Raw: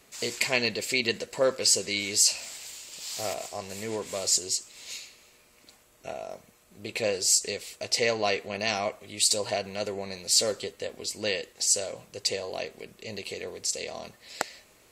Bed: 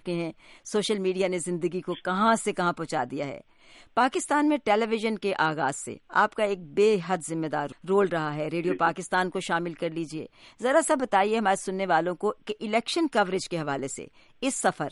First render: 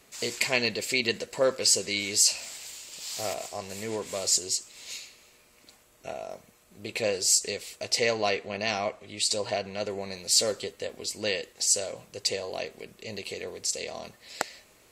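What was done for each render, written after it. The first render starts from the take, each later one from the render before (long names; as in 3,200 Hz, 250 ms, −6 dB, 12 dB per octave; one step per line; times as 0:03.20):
0:08.29–0:09.90: high-frequency loss of the air 53 metres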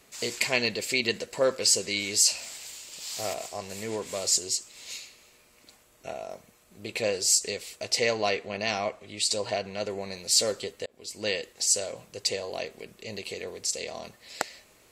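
0:10.86–0:11.29: fade in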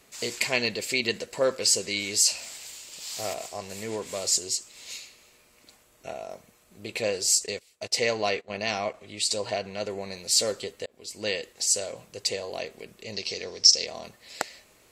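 0:07.27–0:08.94: noise gate −38 dBFS, range −18 dB
0:13.12–0:13.86: low-pass with resonance 5,400 Hz, resonance Q 12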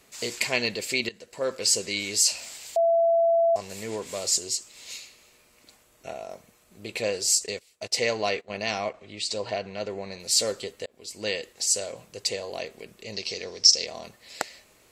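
0:01.09–0:01.72: fade in, from −19.5 dB
0:02.76–0:03.56: beep over 670 Hz −17.5 dBFS
0:08.89–0:10.20: high-frequency loss of the air 75 metres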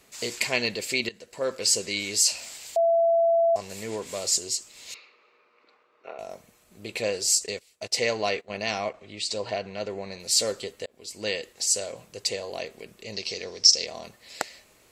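0:04.94–0:06.19: loudspeaker in its box 440–3,300 Hz, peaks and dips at 440 Hz +6 dB, 680 Hz −6 dB, 1,200 Hz +7 dB, 1,800 Hz −4 dB, 3,200 Hz −9 dB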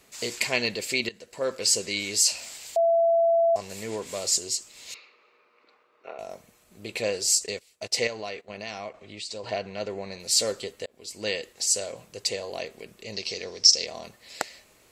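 0:08.07–0:09.44: downward compressor 2 to 1, threshold −37 dBFS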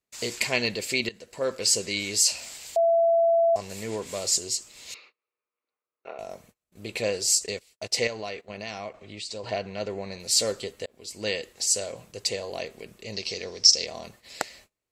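low-shelf EQ 160 Hz +5 dB
noise gate −52 dBFS, range −30 dB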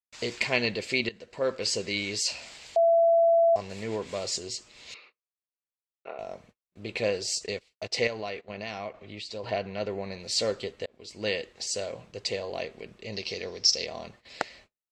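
noise gate with hold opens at −43 dBFS
low-pass filter 4,200 Hz 12 dB per octave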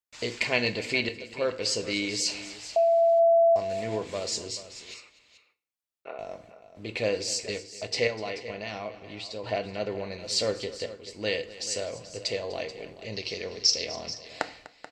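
multi-tap delay 248/433 ms −17.5/−14.5 dB
feedback delay network reverb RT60 0.47 s, low-frequency decay 1.25×, high-frequency decay 0.9×, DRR 10.5 dB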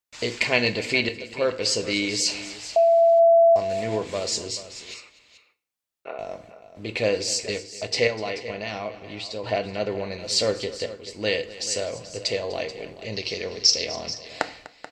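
level +4.5 dB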